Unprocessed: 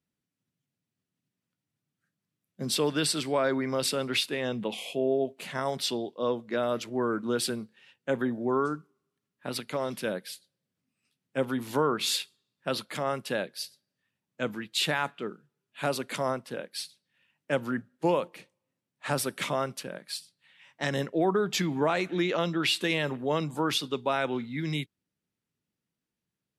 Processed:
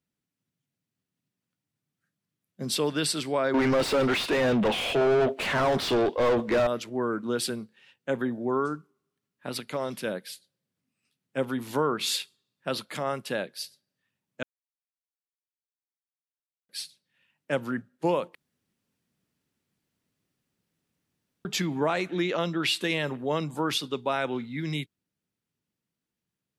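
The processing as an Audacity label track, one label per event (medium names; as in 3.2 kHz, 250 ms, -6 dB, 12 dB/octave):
3.540000	6.670000	overdrive pedal drive 32 dB, tone 1.3 kHz, clips at -15 dBFS
14.430000	16.690000	mute
18.350000	21.450000	room tone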